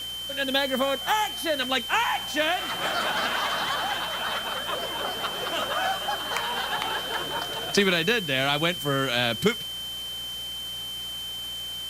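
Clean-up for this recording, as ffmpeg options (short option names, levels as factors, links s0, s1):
-af "adeclick=t=4,bandreject=f=59.2:t=h:w=4,bandreject=f=118.4:t=h:w=4,bandreject=f=177.6:t=h:w=4,bandreject=f=3100:w=30,afwtdn=0.0071"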